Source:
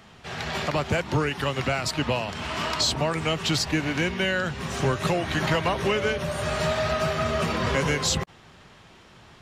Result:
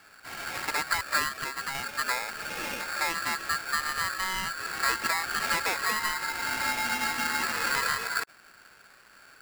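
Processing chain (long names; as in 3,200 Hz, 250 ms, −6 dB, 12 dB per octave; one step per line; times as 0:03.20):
low-pass filter 1,400 Hz 24 dB per octave
0:01.28–0:01.75: downward compressor, threshold −27 dBFS, peak gain reduction 6 dB
low-shelf EQ 65 Hz +11 dB
ring modulator with a square carrier 1,500 Hz
level −4.5 dB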